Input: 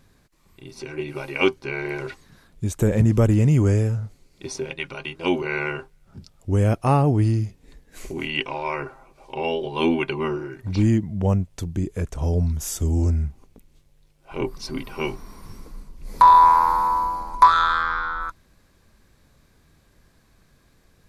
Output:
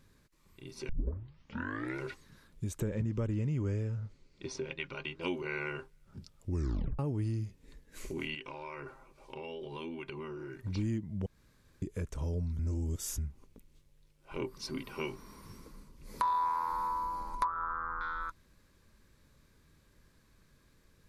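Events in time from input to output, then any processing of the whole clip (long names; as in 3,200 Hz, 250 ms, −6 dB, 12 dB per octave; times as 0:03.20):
0:00.89: tape start 1.14 s
0:02.80–0:05.22: low-pass filter 5,300 Hz
0:06.49: tape stop 0.50 s
0:08.34–0:10.58: downward compressor, threshold −32 dBFS
0:11.26–0:11.82: fill with room tone
0:12.59–0:13.18: reverse
0:14.38–0:16.72: high-pass filter 80 Hz 6 dB per octave
0:17.44–0:18.01: low-pass filter 1,300 Hz 24 dB per octave
whole clip: parametric band 730 Hz −12.5 dB 0.2 octaves; downward compressor 2.5 to 1, threshold −28 dBFS; level −6.5 dB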